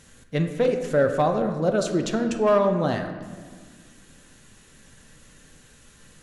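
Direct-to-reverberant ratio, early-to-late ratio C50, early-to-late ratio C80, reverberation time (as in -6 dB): 5.0 dB, 7.5 dB, 9.0 dB, 1.6 s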